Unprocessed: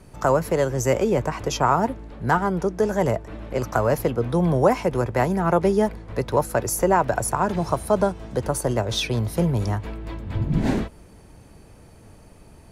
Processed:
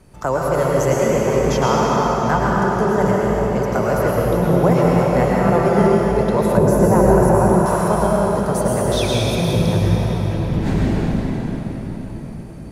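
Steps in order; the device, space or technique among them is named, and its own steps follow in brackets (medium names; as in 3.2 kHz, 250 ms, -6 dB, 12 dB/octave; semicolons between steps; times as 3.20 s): cathedral (reverberation RT60 5.1 s, pre-delay 96 ms, DRR -5.5 dB); 6.57–7.66 s: tilt shelf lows +7 dB, about 830 Hz; trim -1.5 dB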